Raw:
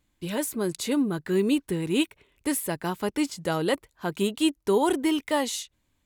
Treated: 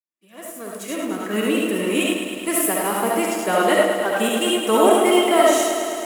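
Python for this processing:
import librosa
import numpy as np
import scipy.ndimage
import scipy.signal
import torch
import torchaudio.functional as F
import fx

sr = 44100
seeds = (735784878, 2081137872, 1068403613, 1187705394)

p1 = fx.fade_in_head(x, sr, length_s=1.7)
p2 = fx.pitch_keep_formants(p1, sr, semitones=2.0)
p3 = fx.low_shelf(p2, sr, hz=300.0, db=-10.0)
p4 = fx.rev_freeverb(p3, sr, rt60_s=0.49, hf_ratio=0.45, predelay_ms=30, drr_db=-2.0)
p5 = np.sign(p4) * np.maximum(np.abs(p4) - 10.0 ** (-40.0 / 20.0), 0.0)
p6 = p4 + (p5 * 10.0 ** (2.5 / 20.0))
p7 = scipy.signal.sosfilt(scipy.signal.butter(4, 180.0, 'highpass', fs=sr, output='sos'), p6)
p8 = fx.peak_eq(p7, sr, hz=4300.0, db=-12.5, octaves=0.65)
p9 = fx.echo_crushed(p8, sr, ms=106, feedback_pct=80, bits=8, wet_db=-7.5)
y = p9 * 10.0 ** (1.0 / 20.0)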